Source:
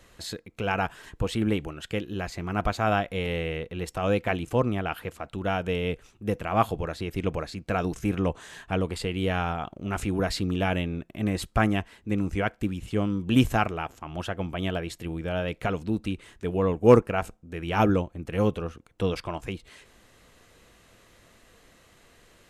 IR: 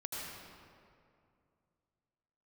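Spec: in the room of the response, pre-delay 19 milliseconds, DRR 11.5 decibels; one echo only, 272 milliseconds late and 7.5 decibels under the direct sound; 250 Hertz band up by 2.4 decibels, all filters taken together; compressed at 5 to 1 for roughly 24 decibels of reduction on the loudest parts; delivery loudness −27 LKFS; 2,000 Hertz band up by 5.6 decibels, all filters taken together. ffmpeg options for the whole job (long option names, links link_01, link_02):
-filter_complex "[0:a]equalizer=frequency=250:width_type=o:gain=3,equalizer=frequency=2000:width_type=o:gain=7.5,acompressor=threshold=-37dB:ratio=5,aecho=1:1:272:0.422,asplit=2[link_01][link_02];[1:a]atrim=start_sample=2205,adelay=19[link_03];[link_02][link_03]afir=irnorm=-1:irlink=0,volume=-13dB[link_04];[link_01][link_04]amix=inputs=2:normalize=0,volume=12dB"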